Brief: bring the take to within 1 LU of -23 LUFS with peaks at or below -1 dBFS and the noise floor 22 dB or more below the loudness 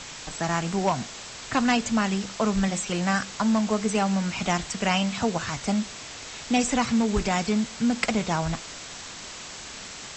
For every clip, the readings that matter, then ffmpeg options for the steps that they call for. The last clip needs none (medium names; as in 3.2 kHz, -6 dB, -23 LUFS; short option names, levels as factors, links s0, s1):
noise floor -40 dBFS; noise floor target -48 dBFS; loudness -25.5 LUFS; peak level -8.5 dBFS; loudness target -23.0 LUFS
-> -af "afftdn=nr=8:nf=-40"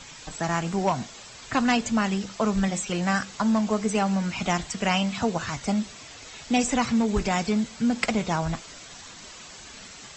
noise floor -44 dBFS; noise floor target -48 dBFS
-> -af "afftdn=nr=6:nf=-44"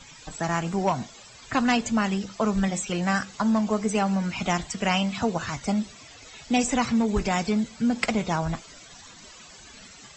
noise floor -48 dBFS; loudness -26.0 LUFS; peak level -8.5 dBFS; loudness target -23.0 LUFS
-> -af "volume=1.41"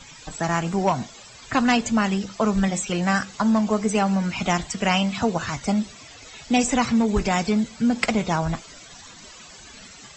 loudness -23.0 LUFS; peak level -5.5 dBFS; noise floor -45 dBFS